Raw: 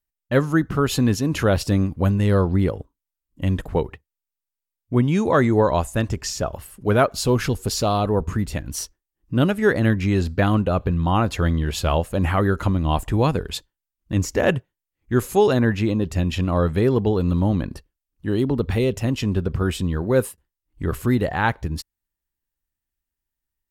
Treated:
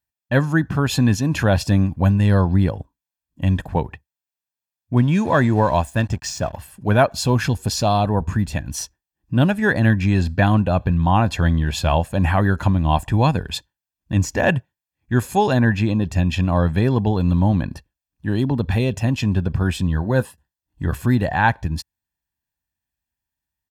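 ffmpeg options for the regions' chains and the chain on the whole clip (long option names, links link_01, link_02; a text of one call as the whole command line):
ffmpeg -i in.wav -filter_complex "[0:a]asettb=1/sr,asplit=3[link_01][link_02][link_03];[link_01]atrim=end=4.974[link_04];[link_02]atrim=start=4.97:end=6.57,asetpts=PTS-STARTPTS,afade=type=in:duration=0.004:curve=qsin,afade=type=out:start_time=1.596:duration=0.004:curve=qsin,bandreject=frequency=800:width=18,aeval=exprs='sgn(val(0))*max(abs(val(0))-0.0075,0)':channel_layout=same[link_05];[link_03]atrim=start=6.566[link_06];[link_04][link_05]acrossfade=duration=0.004:curve1=hsin:curve2=qsin[link_07];[link_07][link_06]acrossfade=duration=0.004:curve1=qsin:curve2=hsin,asettb=1/sr,asplit=3[link_08][link_09][link_10];[link_08]atrim=end=19.874[link_11];[link_09]atrim=start=19.87:end=20.94,asetpts=PTS-STARTPTS,afade=type=in:duration=0.004:curve=qsin,afade=type=out:start_time=1.066:duration=0.004:curve=qsin,bandreject=frequency=2300:width=6,acrossover=split=4600[link_12][link_13];[link_13]acompressor=threshold=-40dB:ratio=4:attack=1:release=60[link_14];[link_12][link_14]amix=inputs=2:normalize=0,asplit=2[link_15][link_16];[link_16]adelay=14,volume=-12dB[link_17];[link_15][link_17]amix=inputs=2:normalize=0,atrim=end_sample=47187[link_18];[link_10]atrim=start=20.936[link_19];[link_11][link_18]acrossfade=duration=0.004:curve1=hsin:curve2=qsin[link_20];[link_20][link_19]acrossfade=duration=0.004:curve1=qsin:curve2=hsin,highpass=70,equalizer=frequency=12000:width_type=o:width=1.2:gain=-4.5,aecho=1:1:1.2:0.53,volume=1.5dB" out.wav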